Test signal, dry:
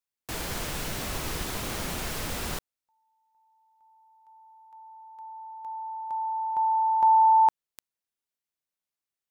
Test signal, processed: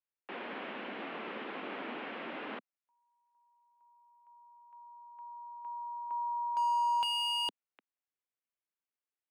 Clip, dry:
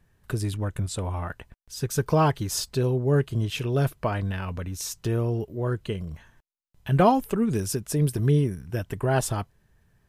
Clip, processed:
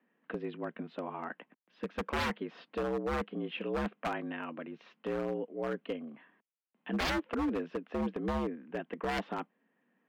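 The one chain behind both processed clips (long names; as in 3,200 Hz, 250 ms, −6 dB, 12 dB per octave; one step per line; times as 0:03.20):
single-sideband voice off tune +66 Hz 160–2,900 Hz
wave folding −21.5 dBFS
level −5 dB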